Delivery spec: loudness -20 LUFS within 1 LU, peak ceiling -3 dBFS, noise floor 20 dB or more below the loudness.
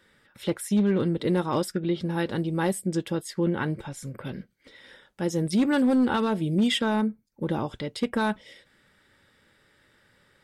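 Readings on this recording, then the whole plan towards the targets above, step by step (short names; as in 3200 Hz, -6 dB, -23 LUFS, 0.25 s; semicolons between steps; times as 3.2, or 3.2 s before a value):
clipped 0.7%; flat tops at -16.5 dBFS; loudness -26.5 LUFS; peak -16.5 dBFS; loudness target -20.0 LUFS
-> clip repair -16.5 dBFS; gain +6.5 dB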